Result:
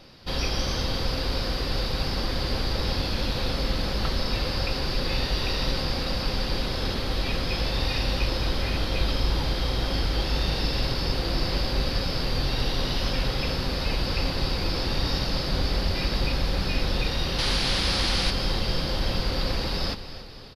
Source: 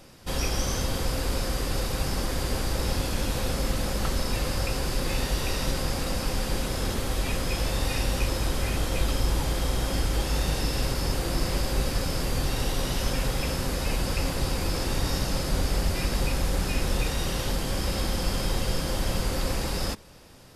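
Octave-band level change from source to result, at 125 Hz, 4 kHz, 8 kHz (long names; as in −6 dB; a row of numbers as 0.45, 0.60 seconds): +0.5, +5.5, −7.5 decibels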